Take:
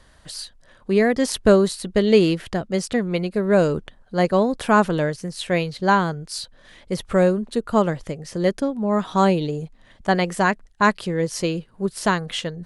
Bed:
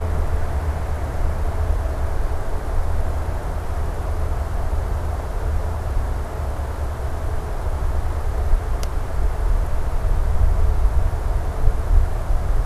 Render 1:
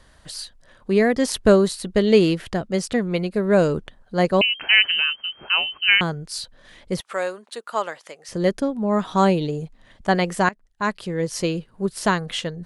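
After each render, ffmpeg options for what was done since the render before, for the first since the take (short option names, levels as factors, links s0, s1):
-filter_complex "[0:a]asettb=1/sr,asplit=3[s0][s1][s2];[s0]atrim=end=4.414[s3];[s1]atrim=start=4.41:end=6.01,asetpts=PTS-STARTPTS,afade=t=in:d=0.004:c=qsin,afade=t=out:st=1.596:d=0.004:c=qsin,lowpass=f=2700:t=q:w=0.5098,lowpass=f=2700:t=q:w=0.6013,lowpass=f=2700:t=q:w=0.9,lowpass=f=2700:t=q:w=2.563,afreqshift=-3200[s4];[s2]atrim=start=6.006[s5];[s3][s4]acrossfade=d=0.004:c1=hsin:c2=qsin[s6];[s6][s5]acrossfade=d=0.004:c1=qsin:c2=hsin,asettb=1/sr,asplit=3[s7][s8][s9];[s7]atrim=end=7.004[s10];[s8]atrim=start=7:end=8.29,asetpts=PTS-STARTPTS,afade=t=in:d=0.004:c=qsin,afade=t=out:st=1.286:d=0.004:c=qsin,highpass=800[s11];[s9]atrim=start=8.286[s12];[s10][s11]acrossfade=d=0.004:c1=hsin:c2=qsin[s13];[s13][s12]acrossfade=d=0.004:c1=qsin:c2=hsin,asplit=2[s14][s15];[s14]atrim=end=10.49,asetpts=PTS-STARTPTS,afade=t=out:st=10.486:d=0.004:c=hsin:silence=0.112202[s16];[s15]atrim=start=10.49,asetpts=PTS-STARTPTS,afade=t=in:d=0.89:silence=0.112202[s17];[s16][s17]concat=n=2:v=0:a=1"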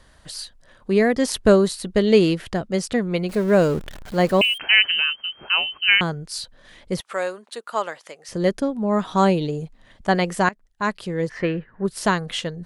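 -filter_complex "[0:a]asettb=1/sr,asplit=3[s0][s1][s2];[s0]atrim=end=3.294[s3];[s1]atrim=start=3.29:end=4.58,asetpts=PTS-STARTPTS,afade=t=in:d=0.004:c=qsin,afade=t=out:st=1.286:d=0.004:c=qsin,aeval=exprs='val(0)+0.5*0.0237*sgn(val(0))':c=same[s4];[s2]atrim=start=4.576[s5];[s3][s4]acrossfade=d=0.004:c1=hsin:c2=qsin[s6];[s6][s5]acrossfade=d=0.004:c1=qsin:c2=hsin,asplit=3[s7][s8][s9];[s7]afade=t=out:st=11.28:d=0.02[s10];[s8]lowpass=f=1800:t=q:w=7.6,afade=t=in:st=11.28:d=0.02,afade=t=out:st=11.84:d=0.02[s11];[s9]afade=t=in:st=11.84:d=0.02[s12];[s10][s11][s12]amix=inputs=3:normalize=0"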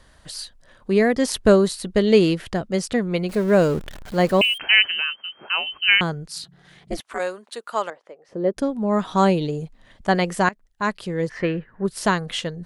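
-filter_complex "[0:a]asettb=1/sr,asplit=3[s0][s1][s2];[s0]atrim=end=4.884[s3];[s1]atrim=start=4.88:end=5.67,asetpts=PTS-STARTPTS,afade=t=in:d=0.004:c=qsin,afade=t=out:st=0.786:d=0.004:c=qsin,highpass=180,lowpass=2600[s4];[s2]atrim=start=5.666[s5];[s3][s4]acrossfade=d=0.004:c1=hsin:c2=qsin[s6];[s6][s5]acrossfade=d=0.004:c1=qsin:c2=hsin,asplit=3[s7][s8][s9];[s7]afade=t=out:st=6.27:d=0.02[s10];[s8]aeval=exprs='val(0)*sin(2*PI*160*n/s)':c=same,afade=t=in:st=6.27:d=0.02,afade=t=out:st=7.18:d=0.02[s11];[s9]afade=t=in:st=7.18:d=0.02[s12];[s10][s11][s12]amix=inputs=3:normalize=0,asettb=1/sr,asplit=3[s13][s14][s15];[s13]atrim=end=7.904[s16];[s14]atrim=start=7.9:end=8.57,asetpts=PTS-STARTPTS,afade=t=in:d=0.004:c=qsin,afade=t=out:st=0.666:d=0.004:c=qsin,bandpass=f=440:t=q:w=0.95[s17];[s15]atrim=start=8.566[s18];[s16][s17]acrossfade=d=0.004:c1=hsin:c2=qsin[s19];[s19][s18]acrossfade=d=0.004:c1=qsin:c2=hsin"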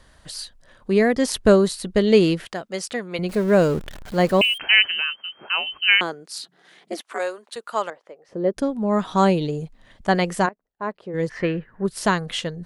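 -filter_complex "[0:a]asettb=1/sr,asplit=3[s0][s1][s2];[s0]atrim=end=2.454[s3];[s1]atrim=start=2.45:end=3.19,asetpts=PTS-STARTPTS,afade=t=in:d=0.004:c=qsin,afade=t=out:st=0.736:d=0.004:c=qsin,highpass=f=680:p=1[s4];[s2]atrim=start=3.186[s5];[s3][s4]acrossfade=d=0.004:c1=hsin:c2=qsin[s6];[s6][s5]acrossfade=d=0.004:c1=qsin:c2=hsin,asettb=1/sr,asplit=3[s7][s8][s9];[s7]atrim=end=5.884[s10];[s8]atrim=start=5.88:end=7.56,asetpts=PTS-STARTPTS,afade=t=in:d=0.004:c=qsin,afade=t=out:st=1.676:d=0.004:c=qsin,highpass=f=260:w=0.5412,highpass=f=260:w=1.3066[s11];[s9]atrim=start=7.556[s12];[s10][s11]acrossfade=d=0.004:c1=hsin:c2=qsin[s13];[s13][s12]acrossfade=d=0.004:c1=qsin:c2=hsin,asplit=3[s14][s15][s16];[s14]afade=t=out:st=10.45:d=0.02[s17];[s15]bandpass=f=520:t=q:w=1,afade=t=in:st=10.45:d=0.02,afade=t=out:st=11.13:d=0.02[s18];[s16]afade=t=in:st=11.13:d=0.02[s19];[s17][s18][s19]amix=inputs=3:normalize=0"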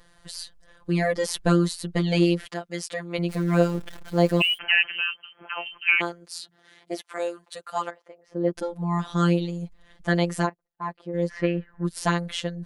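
-af "afftfilt=real='hypot(re,im)*cos(PI*b)':imag='0':win_size=1024:overlap=0.75"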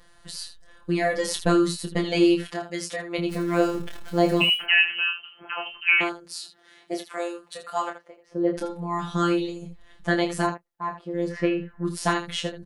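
-af "aecho=1:1:26|79:0.531|0.282"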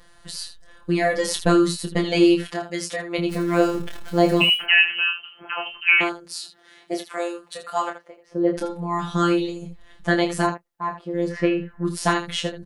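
-af "volume=1.41"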